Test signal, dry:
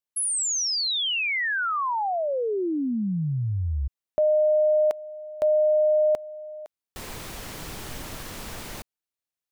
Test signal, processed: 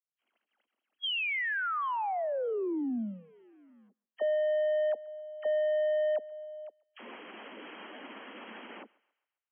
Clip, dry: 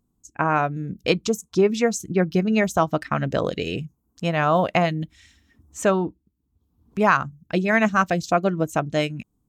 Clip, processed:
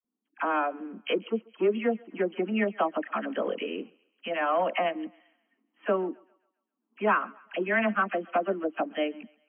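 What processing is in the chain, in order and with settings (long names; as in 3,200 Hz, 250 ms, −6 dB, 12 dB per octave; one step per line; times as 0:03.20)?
spectral magnitudes quantised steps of 15 dB
leveller curve on the samples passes 1
linear-phase brick-wall band-pass 200–3,300 Hz
all-pass dispersion lows, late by 46 ms, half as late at 930 Hz
on a send: feedback echo with a high-pass in the loop 135 ms, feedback 46%, high-pass 510 Hz, level −23 dB
on the sum: level −8.5 dB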